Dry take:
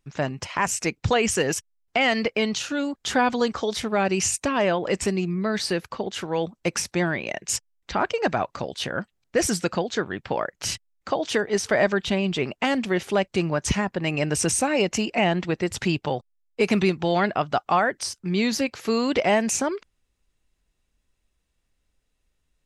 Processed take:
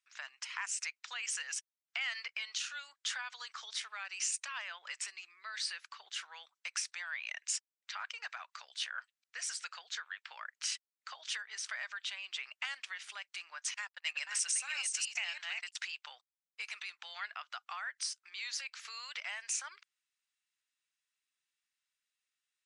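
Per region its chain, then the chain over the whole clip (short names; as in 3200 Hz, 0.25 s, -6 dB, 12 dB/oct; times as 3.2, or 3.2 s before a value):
13.74–15.76 reverse delay 0.328 s, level -3.5 dB + gate -26 dBFS, range -32 dB + high shelf 2900 Hz +9.5 dB
whole clip: elliptic low-pass 9600 Hz, stop band 40 dB; compressor, threshold -24 dBFS; HPF 1300 Hz 24 dB/oct; gain -6.5 dB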